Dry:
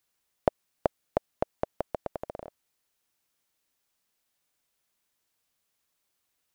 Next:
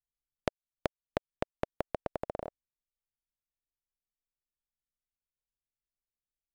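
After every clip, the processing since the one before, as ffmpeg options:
-af "anlmdn=0.0000631,acompressor=threshold=-33dB:ratio=6,volume=4dB"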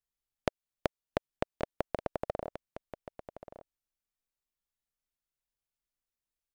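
-af "aecho=1:1:1131:0.237,volume=1dB"

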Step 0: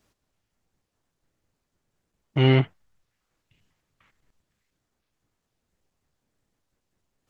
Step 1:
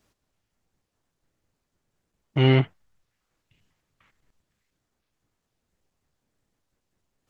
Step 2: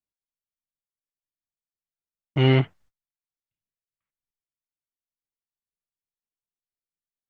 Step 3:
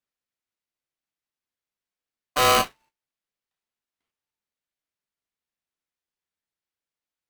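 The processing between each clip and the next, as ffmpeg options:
-af anull
-af "agate=range=-31dB:threshold=-52dB:ratio=16:detection=peak"
-filter_complex "[0:a]flanger=delay=9.7:depth=1.3:regen=-68:speed=0.44:shape=triangular,asplit=2[a][b];[b]highpass=f=720:p=1,volume=18dB,asoftclip=type=tanh:threshold=-10.5dB[c];[a][c]amix=inputs=2:normalize=0,lowpass=f=2.2k:p=1,volume=-6dB,aeval=exprs='val(0)*sgn(sin(2*PI*890*n/s))':c=same,volume=2dB"

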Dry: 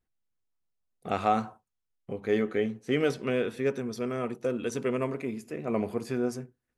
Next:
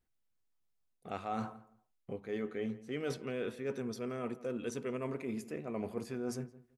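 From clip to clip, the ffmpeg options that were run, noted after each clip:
-filter_complex "[0:a]areverse,acompressor=threshold=-35dB:ratio=6,areverse,asplit=2[a][b];[b]adelay=168,lowpass=f=1.6k:p=1,volume=-17dB,asplit=2[c][d];[d]adelay=168,lowpass=f=1.6k:p=1,volume=0.21[e];[a][c][e]amix=inputs=3:normalize=0"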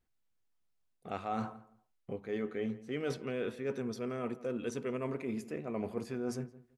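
-af "highshelf=f=7.1k:g=-5.5,volume=1.5dB"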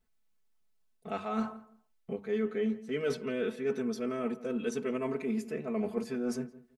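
-af "aecho=1:1:4.6:0.99"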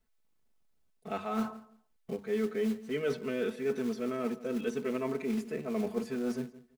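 -filter_complex "[0:a]acrossover=split=340|3600[a][b][c];[a]acrusher=bits=4:mode=log:mix=0:aa=0.000001[d];[c]alimiter=level_in=20.5dB:limit=-24dB:level=0:latency=1:release=189,volume=-20.5dB[e];[d][b][e]amix=inputs=3:normalize=0"

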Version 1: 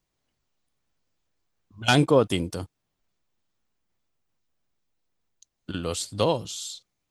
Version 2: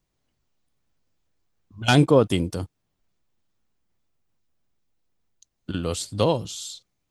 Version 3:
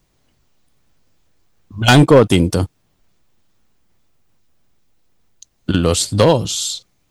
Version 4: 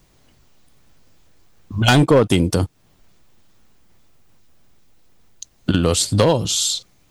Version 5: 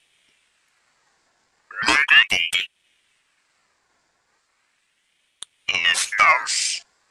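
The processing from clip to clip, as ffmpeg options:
-af "lowshelf=f=380:g=5"
-filter_complex "[0:a]asplit=2[a][b];[b]acompressor=threshold=-25dB:ratio=6,volume=1.5dB[c];[a][c]amix=inputs=2:normalize=0,asoftclip=type=hard:threshold=-10dB,volume=7dB"
-af "acompressor=threshold=-26dB:ratio=2,volume=6.5dB"
-af "highpass=140,equalizer=f=510:t=q:w=4:g=7,equalizer=f=890:t=q:w=4:g=5,equalizer=f=1.9k:t=q:w=4:g=-5,equalizer=f=6k:t=q:w=4:g=7,lowpass=f=8.2k:w=0.5412,lowpass=f=8.2k:w=1.3066,aeval=exprs='val(0)*sin(2*PI*2000*n/s+2000*0.4/0.37*sin(2*PI*0.37*n/s))':c=same,volume=-1.5dB"

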